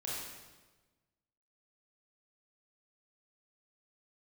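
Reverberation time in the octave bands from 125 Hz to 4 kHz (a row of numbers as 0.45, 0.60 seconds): 1.6, 1.5, 1.3, 1.2, 1.1, 1.1 seconds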